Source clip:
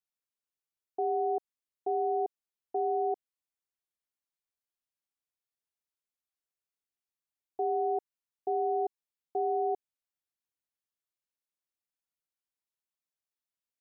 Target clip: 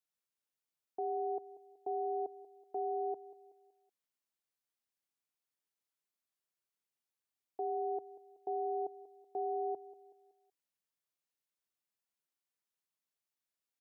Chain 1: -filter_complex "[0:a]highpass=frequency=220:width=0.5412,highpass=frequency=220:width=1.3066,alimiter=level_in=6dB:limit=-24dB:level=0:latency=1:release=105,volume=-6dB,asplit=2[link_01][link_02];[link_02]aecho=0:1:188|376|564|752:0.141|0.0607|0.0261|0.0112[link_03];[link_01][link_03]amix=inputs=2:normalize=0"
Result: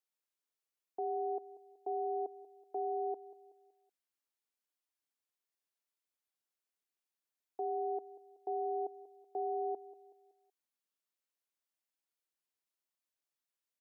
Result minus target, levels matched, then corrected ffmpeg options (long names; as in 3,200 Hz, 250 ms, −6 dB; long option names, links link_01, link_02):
125 Hz band −4.0 dB
-filter_complex "[0:a]highpass=frequency=100:width=0.5412,highpass=frequency=100:width=1.3066,alimiter=level_in=6dB:limit=-24dB:level=0:latency=1:release=105,volume=-6dB,asplit=2[link_01][link_02];[link_02]aecho=0:1:188|376|564|752:0.141|0.0607|0.0261|0.0112[link_03];[link_01][link_03]amix=inputs=2:normalize=0"